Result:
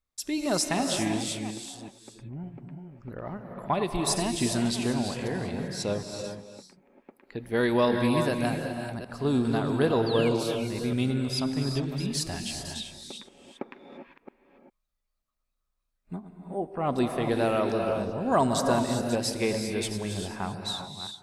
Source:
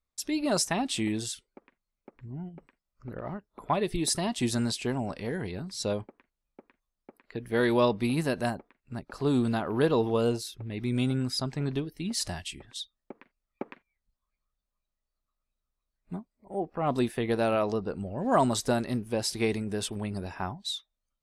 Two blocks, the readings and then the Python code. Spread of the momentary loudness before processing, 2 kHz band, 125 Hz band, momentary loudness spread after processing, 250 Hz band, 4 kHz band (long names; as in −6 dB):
16 LU, +2.0 dB, +1.5 dB, 18 LU, +2.0 dB, +2.0 dB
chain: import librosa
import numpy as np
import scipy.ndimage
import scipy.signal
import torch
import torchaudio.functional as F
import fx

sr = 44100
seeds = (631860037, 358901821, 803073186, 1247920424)

y = fx.reverse_delay(x, sr, ms=377, wet_db=-11)
y = fx.spec_paint(y, sr, seeds[0], shape='fall', start_s=10.06, length_s=0.23, low_hz=2100.0, high_hz=4900.0, level_db=-38.0)
y = fx.rev_gated(y, sr, seeds[1], gate_ms=420, shape='rising', drr_db=4.5)